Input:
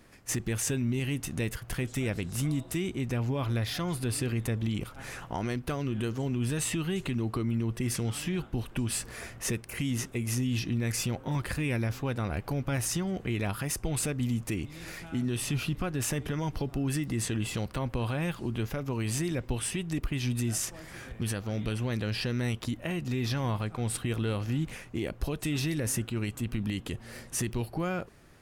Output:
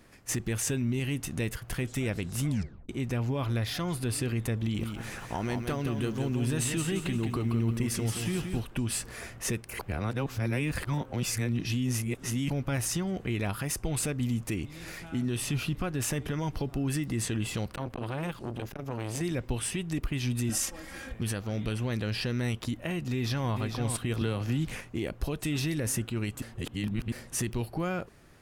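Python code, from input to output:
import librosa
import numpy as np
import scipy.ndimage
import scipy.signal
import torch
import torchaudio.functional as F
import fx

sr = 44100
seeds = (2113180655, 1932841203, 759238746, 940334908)

y = fx.echo_crushed(x, sr, ms=174, feedback_pct=35, bits=10, wet_db=-6, at=(4.57, 8.61))
y = fx.transformer_sat(y, sr, knee_hz=570.0, at=(17.75, 19.21))
y = fx.comb(y, sr, ms=3.7, depth=0.79, at=(20.49, 21.14))
y = fx.echo_throw(y, sr, start_s=23.11, length_s=0.4, ms=450, feedback_pct=25, wet_db=-6.5)
y = fx.band_squash(y, sr, depth_pct=100, at=(24.21, 24.81))
y = fx.edit(y, sr, fx.tape_stop(start_s=2.48, length_s=0.41),
    fx.reverse_span(start_s=9.79, length_s=2.71),
    fx.reverse_span(start_s=26.42, length_s=0.7), tone=tone)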